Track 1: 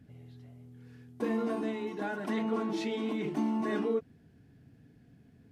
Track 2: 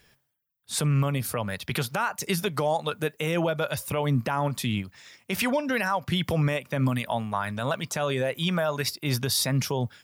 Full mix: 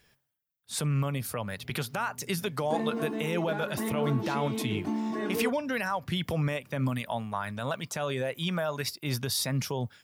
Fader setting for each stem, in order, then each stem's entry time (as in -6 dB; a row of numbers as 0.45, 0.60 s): -0.5, -4.5 dB; 1.50, 0.00 s